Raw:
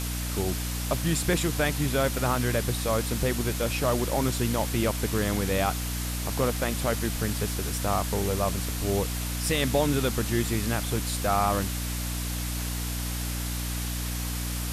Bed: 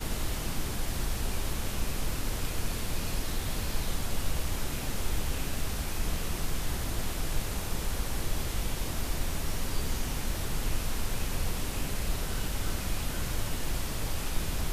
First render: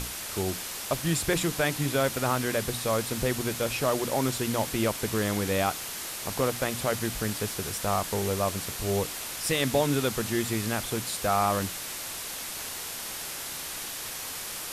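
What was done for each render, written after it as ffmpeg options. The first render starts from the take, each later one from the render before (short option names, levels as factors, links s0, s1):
-af "bandreject=f=60:t=h:w=6,bandreject=f=120:t=h:w=6,bandreject=f=180:t=h:w=6,bandreject=f=240:t=h:w=6,bandreject=f=300:t=h:w=6"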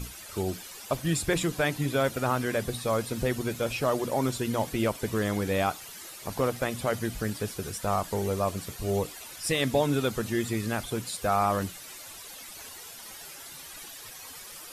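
-af "afftdn=nr=12:nf=-37"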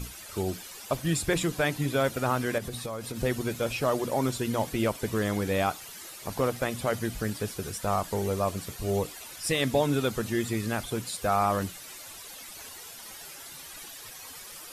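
-filter_complex "[0:a]asettb=1/sr,asplit=3[s0][s1][s2];[s0]atrim=end=2.584[s3];[s1]atrim=start=2.58:end=3.23,asetpts=PTS-STARTPTS,afade=t=in:d=0.004:c=qsin,afade=t=out:st=0.646:d=0.004:c=qsin,acompressor=threshold=0.0316:ratio=12:attack=3.2:release=140:knee=1:detection=peak[s4];[s2]atrim=start=3.226[s5];[s3][s4]acrossfade=d=0.004:c1=hsin:c2=qsin[s6];[s6][s5]acrossfade=d=0.004:c1=qsin:c2=hsin"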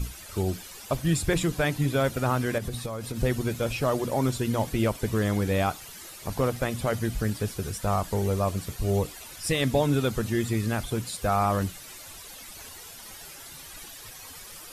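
-af "lowshelf=f=130:g=10"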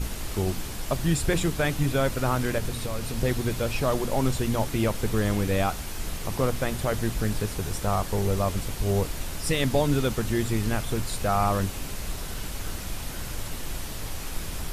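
-filter_complex "[1:a]volume=0.794[s0];[0:a][s0]amix=inputs=2:normalize=0"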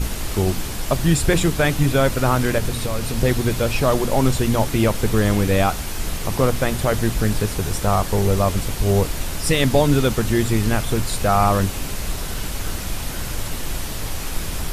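-af "volume=2.24"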